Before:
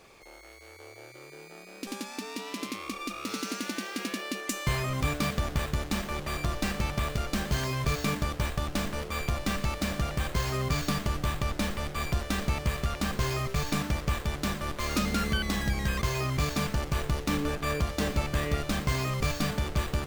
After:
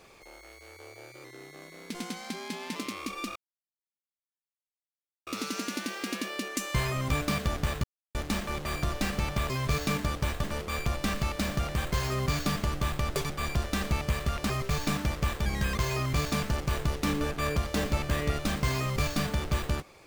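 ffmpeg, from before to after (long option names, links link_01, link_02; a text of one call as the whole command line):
ffmpeg -i in.wav -filter_complex "[0:a]asplit=11[link_01][link_02][link_03][link_04][link_05][link_06][link_07][link_08][link_09][link_10][link_11];[link_01]atrim=end=1.244[link_12];[link_02]atrim=start=1.24:end=2.59,asetpts=PTS-STARTPTS,asetrate=39249,aresample=44100,atrim=end_sample=66893,asetpts=PTS-STARTPTS[link_13];[link_03]atrim=start=2.586:end=3.19,asetpts=PTS-STARTPTS,afade=type=out:start_time=0.6:duration=0.004:curve=hsin,apad=pad_dur=1.91[link_14];[link_04]atrim=start=3.19:end=5.76,asetpts=PTS-STARTPTS,afade=type=in:duration=0.004:curve=hsin,afade=type=out:start_time=2.566:duration=0.004:curve=hsin,apad=pad_dur=0.31[link_15];[link_05]atrim=start=5.76:end=7.112,asetpts=PTS-STARTPTS,afade=type=in:duration=0.004:curve=hsin[link_16];[link_06]atrim=start=7.668:end=8.612[link_17];[link_07]atrim=start=8.858:end=11.574[link_18];[link_08]atrim=start=11.57:end=11.87,asetpts=PTS-STARTPTS,asetrate=87318,aresample=44100[link_19];[link_09]atrim=start=11.866:end=13.072[link_20];[link_10]atrim=start=13.348:end=14.312[link_21];[link_11]atrim=start=15.698[link_22];[link_12][link_13]acrossfade=duration=0.004:curve1=hsin:curve2=hsin[link_23];[link_14][link_15][link_16]concat=n=3:v=0:a=1[link_24];[link_23][link_24]acrossfade=duration=0.004:curve1=hsin:curve2=hsin[link_25];[link_25][link_17]acrossfade=duration=0.004:curve1=hsin:curve2=hsin[link_26];[link_26][link_18]acrossfade=duration=0.004:curve1=hsin:curve2=hsin[link_27];[link_27][link_19]acrossfade=duration=0.004:curve1=hsin:curve2=hsin[link_28];[link_28][link_20]acrossfade=duration=0.004:curve1=hsin:curve2=hsin[link_29];[link_29][link_21]acrossfade=duration=0.004:curve1=hsin:curve2=hsin[link_30];[link_30][link_22]acrossfade=duration=0.004:curve1=hsin:curve2=hsin" out.wav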